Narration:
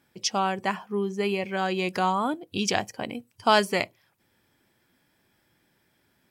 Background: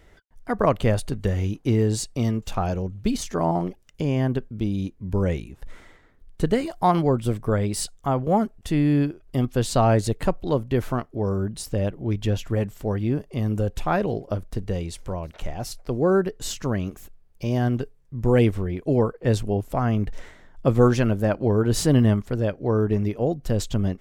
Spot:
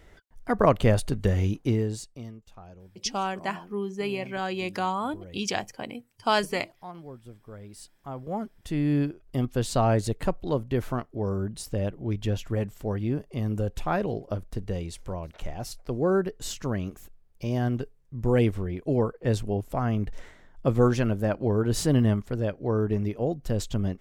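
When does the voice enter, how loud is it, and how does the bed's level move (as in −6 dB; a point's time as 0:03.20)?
2.80 s, −3.5 dB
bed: 0:01.58 0 dB
0:02.46 −22.5 dB
0:07.48 −22.5 dB
0:08.93 −4 dB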